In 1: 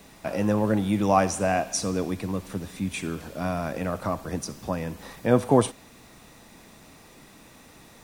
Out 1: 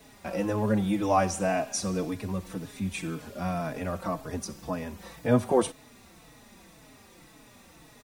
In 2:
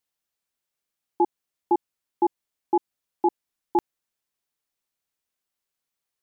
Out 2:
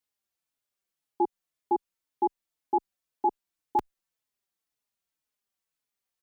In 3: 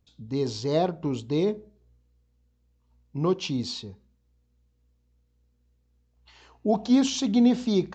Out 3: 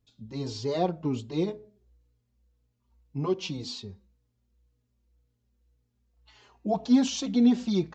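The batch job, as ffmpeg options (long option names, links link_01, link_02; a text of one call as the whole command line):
ffmpeg -i in.wav -filter_complex "[0:a]asplit=2[link_01][link_02];[link_02]adelay=4.2,afreqshift=-1.9[link_03];[link_01][link_03]amix=inputs=2:normalize=1" out.wav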